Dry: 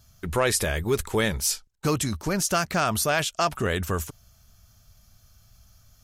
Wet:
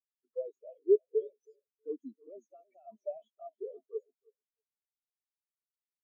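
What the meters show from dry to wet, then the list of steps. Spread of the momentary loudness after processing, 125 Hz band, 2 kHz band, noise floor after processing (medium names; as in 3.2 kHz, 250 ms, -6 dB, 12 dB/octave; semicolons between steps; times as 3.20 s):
24 LU, under -40 dB, under -40 dB, under -85 dBFS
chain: elliptic high-pass 240 Hz, stop band 40 dB; peaking EQ 6.5 kHz +6.5 dB 0.4 oct; peak limiter -13.5 dBFS, peak gain reduction 5 dB; overdrive pedal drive 27 dB, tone 3.4 kHz, clips at -13.5 dBFS; touch-sensitive flanger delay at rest 3.6 ms, full sweep at -20.5 dBFS; feedback delay 320 ms, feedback 43%, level -7 dB; spectral contrast expander 4:1; trim -2.5 dB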